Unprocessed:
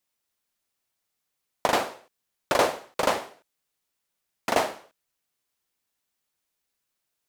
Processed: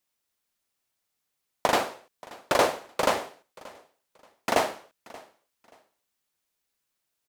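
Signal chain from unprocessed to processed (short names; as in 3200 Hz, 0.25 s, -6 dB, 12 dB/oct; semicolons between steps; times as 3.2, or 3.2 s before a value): feedback echo 0.58 s, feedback 25%, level -21.5 dB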